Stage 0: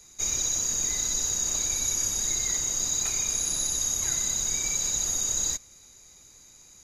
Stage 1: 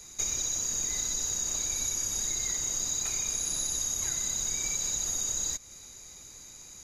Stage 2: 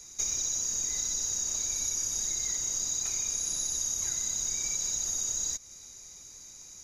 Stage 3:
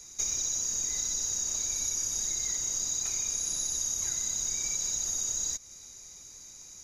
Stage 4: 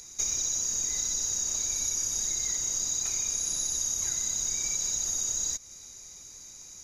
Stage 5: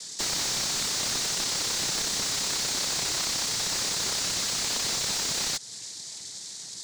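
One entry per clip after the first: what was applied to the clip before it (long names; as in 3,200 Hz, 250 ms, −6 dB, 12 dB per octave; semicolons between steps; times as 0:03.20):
downward compressor 6 to 1, threshold −33 dBFS, peak gain reduction 10 dB; level +4.5 dB
parametric band 5,700 Hz +11 dB 0.34 octaves; level −4.5 dB
no processing that can be heard
upward compression, threshold −51 dBFS; level +1.5 dB
cochlear-implant simulation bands 6; slew-rate limiting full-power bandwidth 100 Hz; level +7.5 dB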